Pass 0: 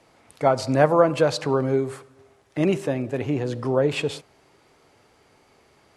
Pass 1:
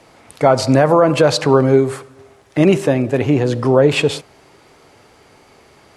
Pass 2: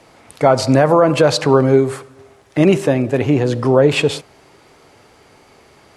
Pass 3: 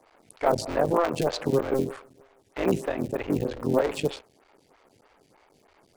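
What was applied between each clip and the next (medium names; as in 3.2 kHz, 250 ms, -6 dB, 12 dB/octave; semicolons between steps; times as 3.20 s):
loudness maximiser +11 dB; trim -1 dB
no audible change
cycle switcher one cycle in 3, muted; lamp-driven phase shifter 3.2 Hz; trim -8 dB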